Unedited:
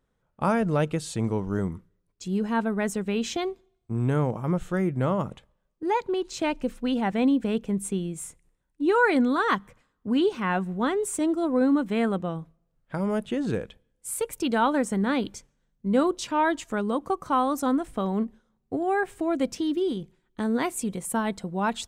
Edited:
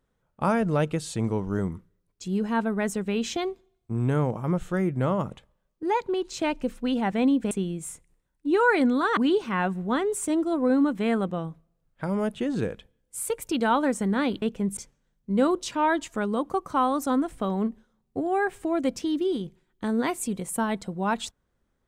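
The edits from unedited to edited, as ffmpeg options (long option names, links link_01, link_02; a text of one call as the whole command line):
ffmpeg -i in.wav -filter_complex "[0:a]asplit=5[link_01][link_02][link_03][link_04][link_05];[link_01]atrim=end=7.512[link_06];[link_02]atrim=start=7.858:end=9.522[link_07];[link_03]atrim=start=10.078:end=15.332[link_08];[link_04]atrim=start=7.508:end=7.862[link_09];[link_05]atrim=start=15.328[link_10];[link_06][link_07]acrossfade=duration=0.004:curve1=hsin:curve2=hsin[link_11];[link_11][link_08]acrossfade=duration=0.004:curve1=hsin:curve2=hsin[link_12];[link_12][link_09]acrossfade=duration=0.004:curve1=hsin:curve2=hsin[link_13];[link_13][link_10]acrossfade=duration=0.004:curve1=hsin:curve2=hsin" out.wav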